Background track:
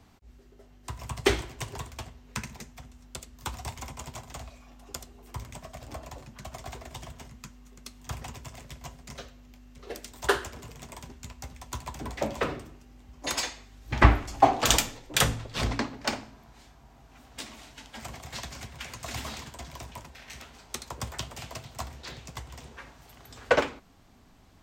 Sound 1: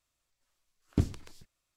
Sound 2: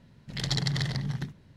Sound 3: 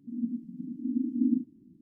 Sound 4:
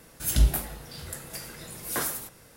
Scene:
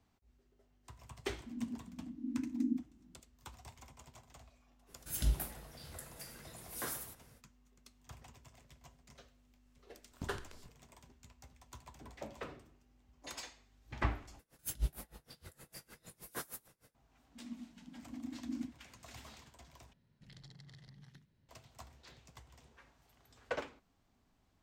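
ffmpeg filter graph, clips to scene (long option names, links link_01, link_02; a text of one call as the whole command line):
ffmpeg -i bed.wav -i cue0.wav -i cue1.wav -i cue2.wav -i cue3.wav -filter_complex "[3:a]asplit=2[link_01][link_02];[4:a]asplit=2[link_03][link_04];[0:a]volume=-16.5dB[link_05];[1:a]acompressor=threshold=-34dB:ratio=6:attack=3.2:release=140:knee=1:detection=peak[link_06];[link_04]aeval=exprs='val(0)*pow(10,-27*(0.5-0.5*cos(2*PI*6.5*n/s))/20)':channel_layout=same[link_07];[2:a]acrossover=split=320|1500[link_08][link_09][link_10];[link_08]acompressor=threshold=-39dB:ratio=5[link_11];[link_09]acompressor=threshold=-58dB:ratio=3[link_12];[link_10]acompressor=threshold=-45dB:ratio=3[link_13];[link_11][link_12][link_13]amix=inputs=3:normalize=0[link_14];[link_05]asplit=3[link_15][link_16][link_17];[link_15]atrim=end=14.394[link_18];[link_07]atrim=end=2.56,asetpts=PTS-STARTPTS,volume=-9.5dB[link_19];[link_16]atrim=start=16.946:end=19.934[link_20];[link_14]atrim=end=1.56,asetpts=PTS-STARTPTS,volume=-17.5dB[link_21];[link_17]atrim=start=21.486[link_22];[link_01]atrim=end=1.81,asetpts=PTS-STARTPTS,volume=-8.5dB,afade=type=in:duration=0.004:curve=hsin,afade=type=out:start_time=1.806:duration=0.004:curve=hsin,adelay=1390[link_23];[link_03]atrim=end=2.56,asetpts=PTS-STARTPTS,volume=-11.5dB,afade=type=in:duration=0.05,afade=type=out:start_time=2.51:duration=0.05,adelay=4860[link_24];[link_06]atrim=end=1.76,asetpts=PTS-STARTPTS,volume=-4.5dB,afade=type=in:duration=0.004:curve=hsin,afade=type=out:start_time=1.756:duration=0.004:curve=hsin,adelay=9240[link_25];[link_02]atrim=end=1.81,asetpts=PTS-STARTPTS,volume=-15dB,afade=type=in:duration=0.004:curve=hsin,afade=type=out:start_time=1.806:duration=0.004:curve=hsin,adelay=17280[link_26];[link_18][link_19]acrossfade=duration=0.004:curve1=hsin:curve2=hsin[link_27];[link_27][link_20]acrossfade=duration=0.004:curve1=hsin:curve2=hsin[link_28];[link_28][link_21]acrossfade=duration=0.004:curve1=hsin:curve2=hsin[link_29];[link_29][link_22]acrossfade=duration=0.004:curve1=hsin:curve2=hsin[link_30];[link_30][link_23][link_24][link_25][link_26]amix=inputs=5:normalize=0" out.wav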